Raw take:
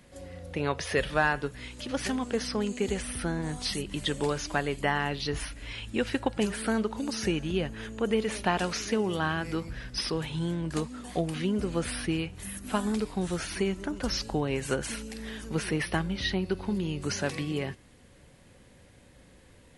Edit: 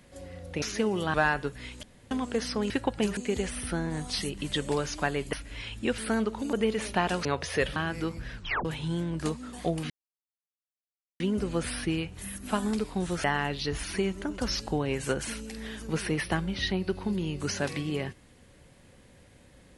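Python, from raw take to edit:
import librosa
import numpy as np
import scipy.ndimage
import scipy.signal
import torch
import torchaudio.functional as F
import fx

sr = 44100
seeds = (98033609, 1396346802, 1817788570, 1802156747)

y = fx.edit(x, sr, fx.swap(start_s=0.62, length_s=0.51, other_s=8.75, other_length_s=0.52),
    fx.room_tone_fill(start_s=1.82, length_s=0.28),
    fx.move(start_s=4.85, length_s=0.59, to_s=13.45),
    fx.move(start_s=6.09, length_s=0.47, to_s=2.69),
    fx.cut(start_s=7.11, length_s=0.92),
    fx.tape_stop(start_s=9.86, length_s=0.3),
    fx.insert_silence(at_s=11.41, length_s=1.3), tone=tone)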